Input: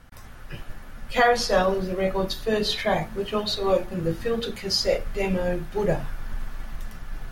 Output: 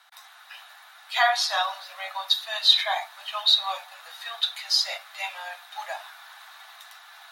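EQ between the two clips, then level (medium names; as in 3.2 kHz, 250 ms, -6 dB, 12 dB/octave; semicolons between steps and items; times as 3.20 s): steep high-pass 690 Hz 72 dB/octave; peaking EQ 3.8 kHz +14 dB 0.24 oct; 0.0 dB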